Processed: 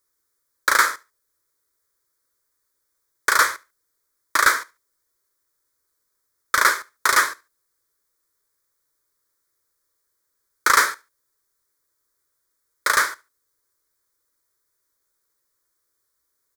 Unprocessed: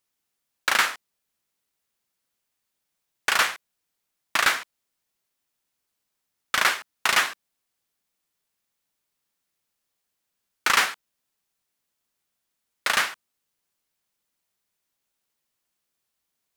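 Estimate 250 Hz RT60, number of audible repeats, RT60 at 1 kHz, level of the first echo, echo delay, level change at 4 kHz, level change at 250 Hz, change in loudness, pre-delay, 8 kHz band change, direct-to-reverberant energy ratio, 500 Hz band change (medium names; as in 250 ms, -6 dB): no reverb, 1, no reverb, -23.0 dB, 72 ms, -1.5 dB, +2.0 dB, +4.0 dB, no reverb, +5.5 dB, no reverb, +4.0 dB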